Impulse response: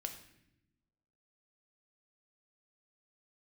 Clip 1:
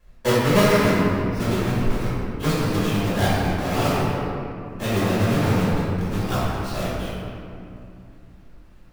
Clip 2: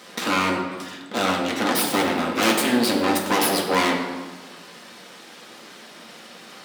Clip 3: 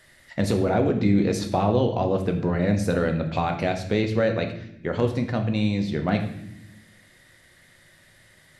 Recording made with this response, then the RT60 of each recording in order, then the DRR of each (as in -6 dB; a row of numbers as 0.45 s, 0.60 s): 3; 2.6 s, 1.3 s, 0.85 s; -13.5 dB, -0.5 dB, 5.0 dB